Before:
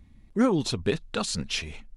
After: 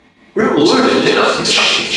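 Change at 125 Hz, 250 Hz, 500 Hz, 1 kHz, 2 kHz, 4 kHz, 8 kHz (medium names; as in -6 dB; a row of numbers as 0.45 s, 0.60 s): +5.5 dB, +12.0 dB, +17.0 dB, +20.0 dB, +21.0 dB, +19.5 dB, +14.0 dB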